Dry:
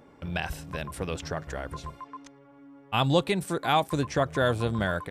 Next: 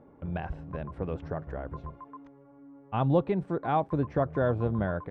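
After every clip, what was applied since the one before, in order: Bessel low-pass 850 Hz, order 2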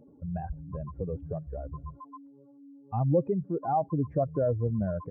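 spectral contrast enhancement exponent 2.2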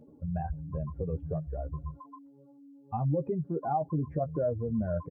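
peak limiter -23 dBFS, peak gain reduction 8.5 dB; doubling 13 ms -6.5 dB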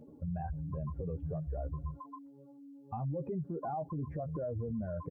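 peak limiter -31.5 dBFS, peak gain reduction 11.5 dB; trim +1 dB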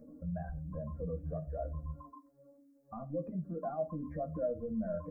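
static phaser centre 600 Hz, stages 8; reverberation, pre-delay 4 ms, DRR 7 dB; trim +1.5 dB

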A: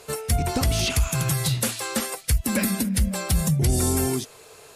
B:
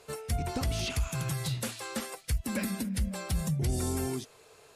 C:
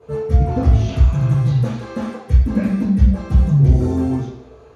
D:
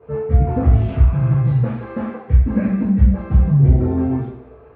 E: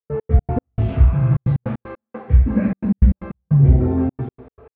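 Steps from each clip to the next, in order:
treble shelf 8 kHz -7 dB; trim -8.5 dB
reverberation RT60 0.70 s, pre-delay 3 ms, DRR -12 dB; trim -14.5 dB
low-pass 2.4 kHz 24 dB/octave
trance gate ".x.x.x..xxxxxx" 154 bpm -60 dB

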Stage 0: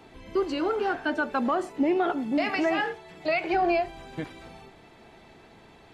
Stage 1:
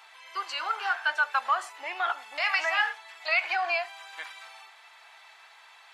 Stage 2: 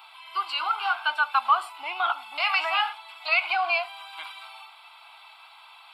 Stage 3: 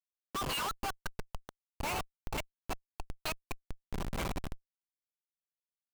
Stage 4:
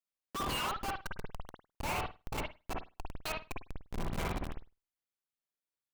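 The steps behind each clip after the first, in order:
high-pass 970 Hz 24 dB/octave; trim +5 dB
static phaser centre 1.8 kHz, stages 6; trim +6 dB
inverted gate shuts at -17 dBFS, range -31 dB; Schmitt trigger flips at -35 dBFS; trim +3 dB
reverberation, pre-delay 51 ms, DRR 0 dB; trim -2.5 dB

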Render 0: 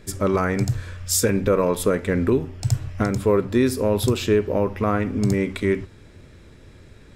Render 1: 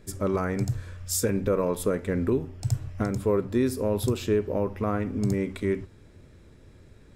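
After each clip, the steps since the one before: peaking EQ 2.8 kHz -4.5 dB 2.6 oct; trim -5 dB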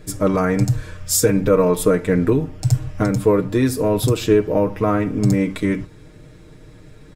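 comb 6.5 ms, depth 68%; trim +8 dB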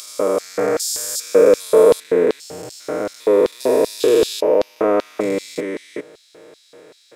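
spectrogram pixelated in time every 400 ms; LFO high-pass square 2.6 Hz 480–4200 Hz; trim +5 dB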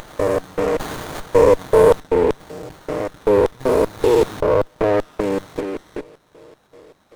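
sliding maximum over 17 samples

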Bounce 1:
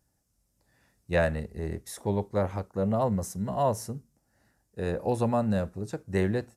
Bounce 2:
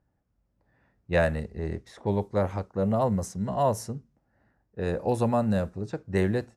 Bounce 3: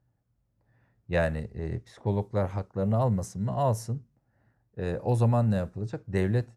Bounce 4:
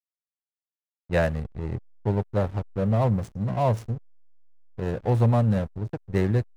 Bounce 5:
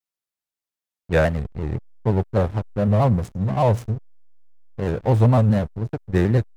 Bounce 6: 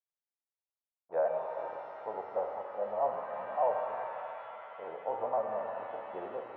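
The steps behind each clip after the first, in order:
level-controlled noise filter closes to 1.8 kHz, open at -23.5 dBFS; trim +1.5 dB
peaking EQ 120 Hz +11.5 dB 0.37 oct; trim -3 dB
hysteresis with a dead band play -31.5 dBFS; trim +3.5 dB
vibrato with a chosen wave square 4 Hz, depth 100 cents; trim +4.5 dB
Butterworth band-pass 740 Hz, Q 1.6; pitch-shifted reverb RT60 3.2 s, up +7 st, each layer -8 dB, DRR 2 dB; trim -8 dB

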